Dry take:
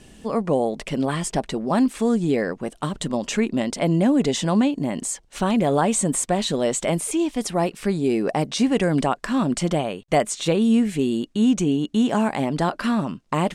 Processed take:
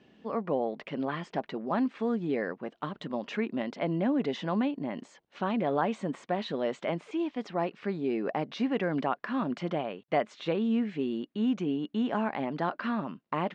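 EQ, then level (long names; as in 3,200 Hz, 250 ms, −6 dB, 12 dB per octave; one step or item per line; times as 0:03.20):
dynamic equaliser 1,500 Hz, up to +4 dB, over −38 dBFS, Q 0.82
band-pass filter 180–4,800 Hz
high-frequency loss of the air 180 metres
−8.5 dB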